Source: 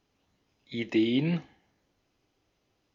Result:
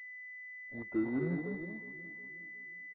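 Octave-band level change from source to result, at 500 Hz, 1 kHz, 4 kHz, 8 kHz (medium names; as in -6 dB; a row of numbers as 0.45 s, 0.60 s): -5.0 dB, -2.0 dB, under -35 dB, no reading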